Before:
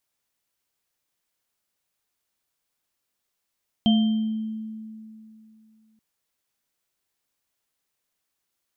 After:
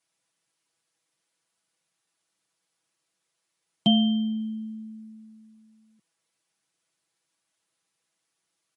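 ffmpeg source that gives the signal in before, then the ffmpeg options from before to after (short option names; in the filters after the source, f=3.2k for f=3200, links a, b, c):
-f lavfi -i "aevalsrc='0.188*pow(10,-3*t/2.8)*sin(2*PI*219*t)+0.0447*pow(10,-3*t/0.67)*sin(2*PI*695*t)+0.0668*pow(10,-3*t/0.92)*sin(2*PI*3140*t)':d=2.13:s=44100"
-af "highpass=f=110:w=0.5412,highpass=f=110:w=1.3066,aecho=1:1:6.1:0.99" -ar 48000 -c:a libmp3lame -b:a 48k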